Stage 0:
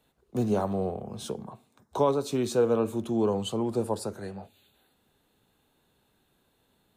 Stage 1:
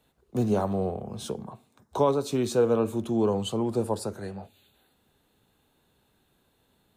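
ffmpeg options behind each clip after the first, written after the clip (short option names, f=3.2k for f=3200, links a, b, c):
-af "equalizer=f=72:t=o:w=1.7:g=2.5,volume=1dB"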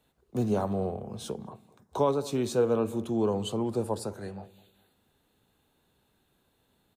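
-filter_complex "[0:a]asplit=2[a][b];[b]adelay=205,lowpass=f=970:p=1,volume=-18dB,asplit=2[c][d];[d]adelay=205,lowpass=f=970:p=1,volume=0.31,asplit=2[e][f];[f]adelay=205,lowpass=f=970:p=1,volume=0.31[g];[a][c][e][g]amix=inputs=4:normalize=0,volume=-2.5dB"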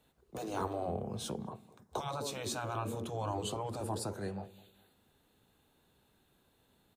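-af "afftfilt=real='re*lt(hypot(re,im),0.141)':imag='im*lt(hypot(re,im),0.141)':win_size=1024:overlap=0.75"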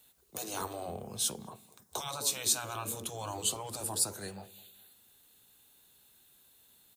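-af "crystalizer=i=8.5:c=0,volume=-5.5dB"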